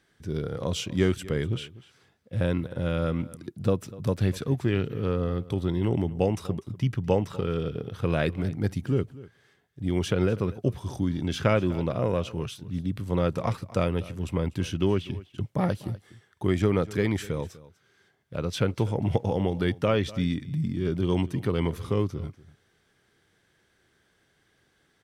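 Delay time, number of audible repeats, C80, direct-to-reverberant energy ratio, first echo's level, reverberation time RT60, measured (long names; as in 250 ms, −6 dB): 246 ms, 1, no reverb audible, no reverb audible, −19.0 dB, no reverb audible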